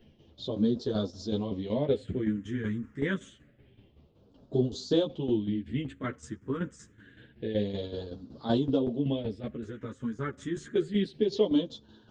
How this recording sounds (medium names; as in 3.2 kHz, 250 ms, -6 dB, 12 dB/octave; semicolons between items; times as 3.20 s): phasing stages 4, 0.27 Hz, lowest notch 680–2000 Hz; tremolo saw down 5.3 Hz, depth 70%; a shimmering, thickened sound